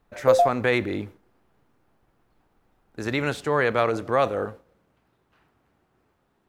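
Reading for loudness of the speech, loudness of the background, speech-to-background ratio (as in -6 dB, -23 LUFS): -25.0 LUFS, -22.0 LUFS, -3.0 dB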